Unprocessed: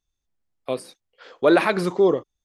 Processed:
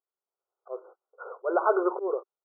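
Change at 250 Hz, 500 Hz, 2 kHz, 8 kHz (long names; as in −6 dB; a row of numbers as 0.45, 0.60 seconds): −12.0 dB, −7.5 dB, −11.5 dB, below −35 dB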